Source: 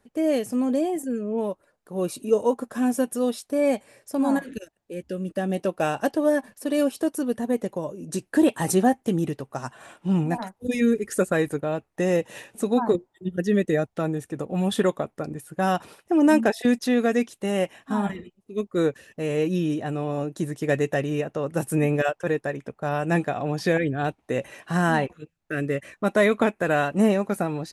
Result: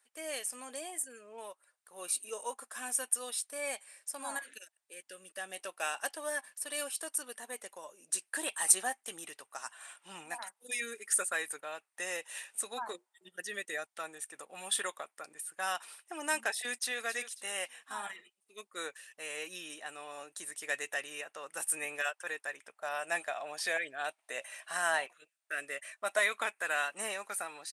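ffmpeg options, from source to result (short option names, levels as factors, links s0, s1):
-filter_complex "[0:a]asplit=2[s0][s1];[s1]afade=t=in:st=16.61:d=0.01,afade=t=out:st=17.01:d=0.01,aecho=0:1:270|540|810|1080:0.266073|0.0931254|0.0325939|0.0114079[s2];[s0][s2]amix=inputs=2:normalize=0,asettb=1/sr,asplit=3[s3][s4][s5];[s3]atrim=end=22.764[s6];[s4]atrim=start=22.76:end=26.19,asetpts=PTS-STARTPTS,afade=t=in:d=0.004:c=qsin,afade=t=out:st=3.426:d=0.004:c=qsin,equalizer=f=640:w=5.9:g=10.5[s7];[s5]atrim=start=26.186[s8];[s6][s7]acrossfade=d=0.004:c1=hsin:c2=qsin[s9];[s9][s8]acrossfade=d=0.004:c1=qsin:c2=hsin,highpass=1400,equalizer=f=8900:w=4:g=13,volume=0.75"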